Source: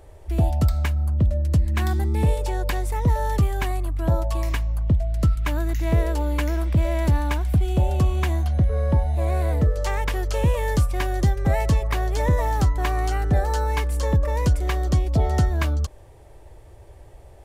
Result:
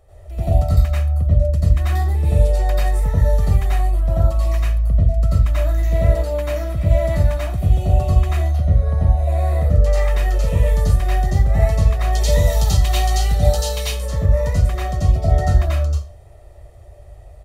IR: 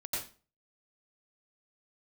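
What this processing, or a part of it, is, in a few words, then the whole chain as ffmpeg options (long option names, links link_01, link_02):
microphone above a desk: -filter_complex "[0:a]asettb=1/sr,asplit=3[link_01][link_02][link_03];[link_01]atrim=end=12.124[link_04];[link_02]atrim=start=12.12:end=13.86,asetpts=PTS-STARTPTS,afade=type=in:duration=0.004:curve=qsin,afade=type=out:start_time=1.736:duration=0.004:curve=qsin,highshelf=frequency=2400:width_type=q:width=1.5:gain=11[link_05];[link_03]atrim=start=13.856[link_06];[link_04][link_05]acrossfade=duration=0.004:curve1=hsin:curve2=qsin[link_07];[link_07][link_06]acrossfade=duration=0.004:curve1=qsin:curve2=hsin,aecho=1:1:1.6:0.53[link_08];[1:a]atrim=start_sample=2205[link_09];[link_08][link_09]afir=irnorm=-1:irlink=0,volume=-3dB"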